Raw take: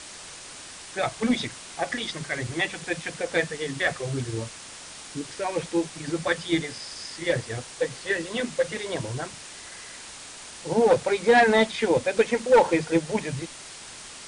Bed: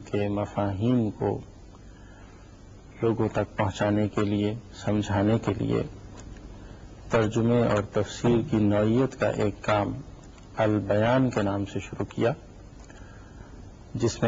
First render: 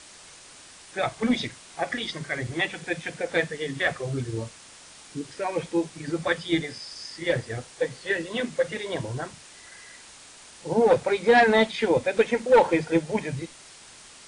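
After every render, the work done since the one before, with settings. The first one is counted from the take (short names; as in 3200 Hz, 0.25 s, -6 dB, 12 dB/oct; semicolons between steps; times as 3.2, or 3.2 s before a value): noise print and reduce 6 dB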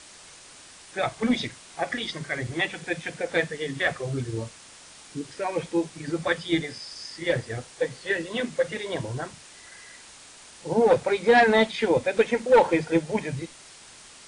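nothing audible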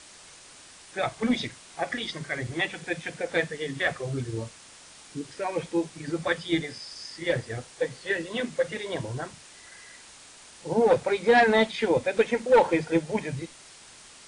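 gain -1.5 dB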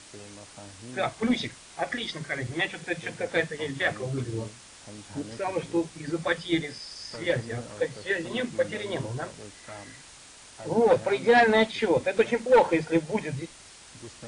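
add bed -19.5 dB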